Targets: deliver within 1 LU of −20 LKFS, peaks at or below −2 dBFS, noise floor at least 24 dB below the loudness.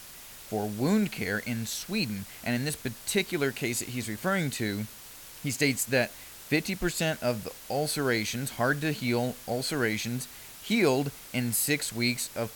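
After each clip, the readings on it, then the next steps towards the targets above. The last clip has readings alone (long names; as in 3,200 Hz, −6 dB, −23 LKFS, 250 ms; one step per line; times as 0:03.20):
background noise floor −47 dBFS; target noise floor −54 dBFS; integrated loudness −29.5 LKFS; sample peak −10.0 dBFS; target loudness −20.0 LKFS
→ noise reduction from a noise print 7 dB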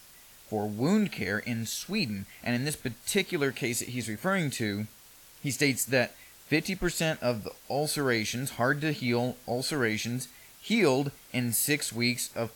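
background noise floor −54 dBFS; integrated loudness −29.5 LKFS; sample peak −10.0 dBFS; target loudness −20.0 LKFS
→ level +9.5 dB
brickwall limiter −2 dBFS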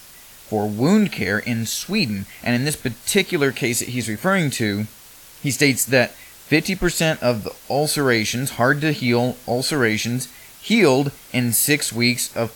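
integrated loudness −20.0 LKFS; sample peak −2.0 dBFS; background noise floor −44 dBFS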